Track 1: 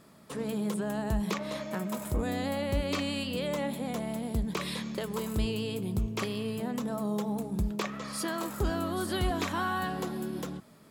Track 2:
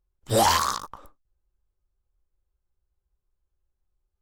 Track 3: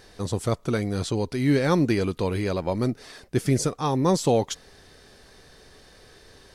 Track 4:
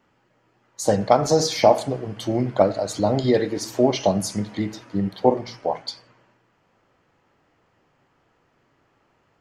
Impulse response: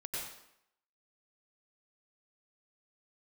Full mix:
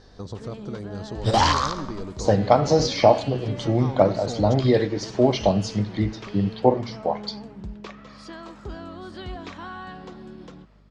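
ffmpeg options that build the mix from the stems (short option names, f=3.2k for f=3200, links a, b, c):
-filter_complex "[0:a]adelay=50,volume=-6dB[a];[1:a]asubboost=boost=9:cutoff=170,adelay=950,volume=1dB,asplit=2[b][c];[c]volume=-13.5dB[d];[2:a]equalizer=f=2.4k:w=1.6:g=-11,acompressor=threshold=-32dB:ratio=4,volume=-1.5dB,asplit=3[e][f][g];[f]volume=-14.5dB[h];[3:a]equalizer=f=110:w=2.3:g=7,adelay=1400,volume=-0.5dB[i];[g]apad=whole_len=227558[j];[b][j]sidechaingate=range=-33dB:threshold=-41dB:ratio=16:detection=peak[k];[4:a]atrim=start_sample=2205[l];[d][h]amix=inputs=2:normalize=0[m];[m][l]afir=irnorm=-1:irlink=0[n];[a][k][e][i][n]amix=inputs=5:normalize=0,lowpass=f=5.7k:w=0.5412,lowpass=f=5.7k:w=1.3066,aeval=exprs='val(0)+0.002*(sin(2*PI*50*n/s)+sin(2*PI*2*50*n/s)/2+sin(2*PI*3*50*n/s)/3+sin(2*PI*4*50*n/s)/4+sin(2*PI*5*50*n/s)/5)':c=same"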